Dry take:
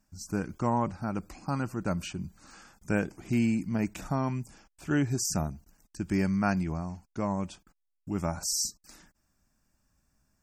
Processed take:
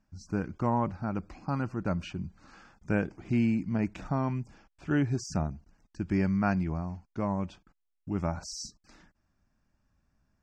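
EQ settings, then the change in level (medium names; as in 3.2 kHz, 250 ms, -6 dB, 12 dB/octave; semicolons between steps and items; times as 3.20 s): distance through air 160 m; peaking EQ 90 Hz +2.5 dB 0.62 oct; 0.0 dB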